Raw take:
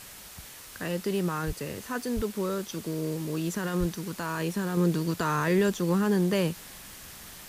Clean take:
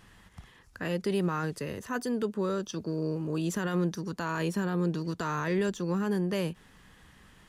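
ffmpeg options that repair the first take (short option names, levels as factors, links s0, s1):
-filter_complex "[0:a]asplit=3[s0][s1][s2];[s0]afade=t=out:st=1.46:d=0.02[s3];[s1]highpass=f=140:w=0.5412,highpass=f=140:w=1.3066,afade=t=in:st=1.46:d=0.02,afade=t=out:st=1.58:d=0.02[s4];[s2]afade=t=in:st=1.58:d=0.02[s5];[s3][s4][s5]amix=inputs=3:normalize=0,asplit=3[s6][s7][s8];[s6]afade=t=out:st=2.15:d=0.02[s9];[s7]highpass=f=140:w=0.5412,highpass=f=140:w=1.3066,afade=t=in:st=2.15:d=0.02,afade=t=out:st=2.27:d=0.02[s10];[s8]afade=t=in:st=2.27:d=0.02[s11];[s9][s10][s11]amix=inputs=3:normalize=0,asplit=3[s12][s13][s14];[s12]afade=t=out:st=3.79:d=0.02[s15];[s13]highpass=f=140:w=0.5412,highpass=f=140:w=1.3066,afade=t=in:st=3.79:d=0.02,afade=t=out:st=3.91:d=0.02[s16];[s14]afade=t=in:st=3.91:d=0.02[s17];[s15][s16][s17]amix=inputs=3:normalize=0,afwtdn=0.0056,asetnsamples=n=441:p=0,asendcmd='4.77 volume volume -4.5dB',volume=1"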